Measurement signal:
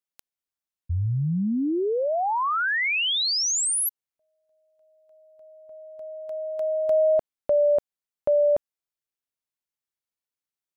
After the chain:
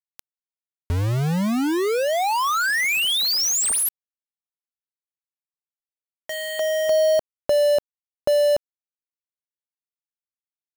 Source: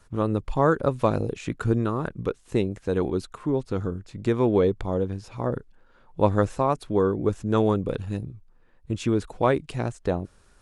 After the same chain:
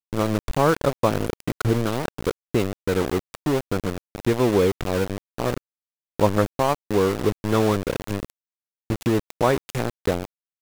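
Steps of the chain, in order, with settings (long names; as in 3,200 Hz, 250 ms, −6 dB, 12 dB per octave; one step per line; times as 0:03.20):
in parallel at +1 dB: downward compressor 16 to 1, threshold −30 dBFS
on the sum: centre clipping without the shift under −23 dBFS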